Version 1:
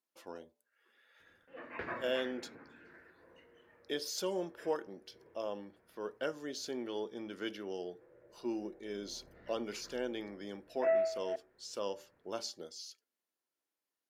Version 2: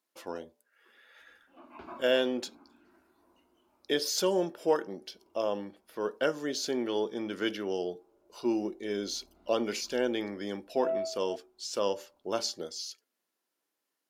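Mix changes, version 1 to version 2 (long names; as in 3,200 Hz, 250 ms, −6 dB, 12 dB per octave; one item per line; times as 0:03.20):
speech +8.5 dB
background: add phaser with its sweep stopped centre 490 Hz, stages 6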